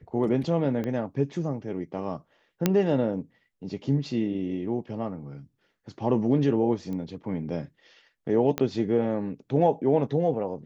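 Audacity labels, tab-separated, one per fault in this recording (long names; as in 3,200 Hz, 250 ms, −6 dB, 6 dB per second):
0.840000	0.840000	click −20 dBFS
2.660000	2.660000	click −7 dBFS
6.930000	6.930000	click −25 dBFS
8.580000	8.580000	click −12 dBFS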